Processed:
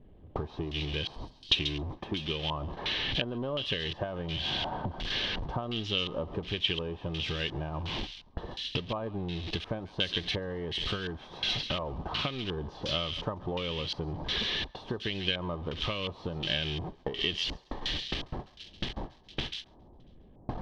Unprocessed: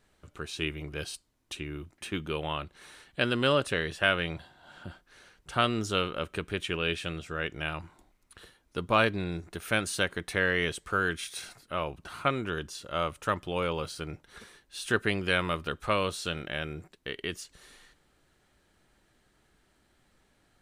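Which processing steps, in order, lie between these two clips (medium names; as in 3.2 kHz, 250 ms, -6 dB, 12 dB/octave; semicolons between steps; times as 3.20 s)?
jump at every zero crossing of -28.5 dBFS; band-stop 1.4 kHz, Q 5.3; in parallel at -1.5 dB: peak limiter -17.5 dBFS, peak gain reduction 7.5 dB; on the sum: gate with hold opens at -24 dBFS; transient shaper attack +10 dB, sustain -7 dB; bass shelf 430 Hz +9 dB; level-controlled noise filter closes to 460 Hz, open at -19 dBFS; on a send: feedback echo behind a high-pass 136 ms, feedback 34%, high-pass 3.5 kHz, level -4 dB; on the sum: compression 6:1, threshold -24 dBFS, peak gain reduction 16.5 dB; LFO low-pass square 1.4 Hz 920–2900 Hz; high-order bell 4.3 kHz +11.5 dB 1.2 oct; trim -9 dB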